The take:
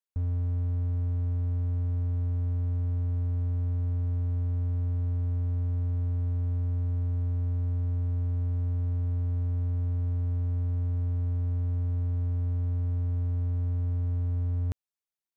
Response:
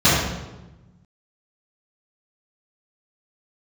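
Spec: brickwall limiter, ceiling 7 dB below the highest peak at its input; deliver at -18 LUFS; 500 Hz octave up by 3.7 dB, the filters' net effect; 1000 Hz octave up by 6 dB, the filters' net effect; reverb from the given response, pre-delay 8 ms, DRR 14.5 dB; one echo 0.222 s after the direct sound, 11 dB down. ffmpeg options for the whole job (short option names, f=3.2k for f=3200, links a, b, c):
-filter_complex "[0:a]equalizer=f=500:t=o:g=3,equalizer=f=1k:t=o:g=6.5,alimiter=level_in=5.5dB:limit=-24dB:level=0:latency=1,volume=-5.5dB,aecho=1:1:222:0.282,asplit=2[a][b];[1:a]atrim=start_sample=2205,adelay=8[c];[b][c]afir=irnorm=-1:irlink=0,volume=-38.5dB[d];[a][d]amix=inputs=2:normalize=0,volume=24.5dB"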